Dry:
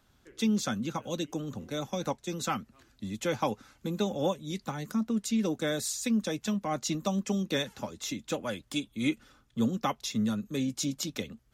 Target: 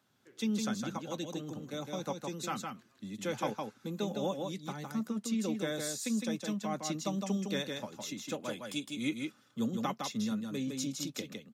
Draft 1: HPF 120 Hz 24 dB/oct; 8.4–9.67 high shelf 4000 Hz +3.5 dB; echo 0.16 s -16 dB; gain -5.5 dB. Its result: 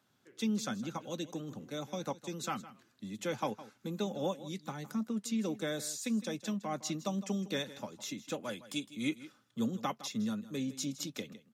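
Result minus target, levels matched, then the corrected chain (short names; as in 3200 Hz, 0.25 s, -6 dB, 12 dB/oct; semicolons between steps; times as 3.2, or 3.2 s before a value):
echo-to-direct -11.5 dB
HPF 120 Hz 24 dB/oct; 8.4–9.67 high shelf 4000 Hz +3.5 dB; echo 0.16 s -4.5 dB; gain -5.5 dB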